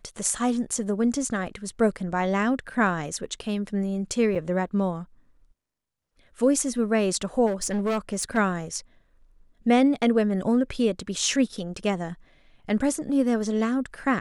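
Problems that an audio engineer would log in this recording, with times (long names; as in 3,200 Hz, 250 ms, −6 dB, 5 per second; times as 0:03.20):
0:04.35–0:04.36: drop-out 5.7 ms
0:07.46–0:08.38: clipping −22 dBFS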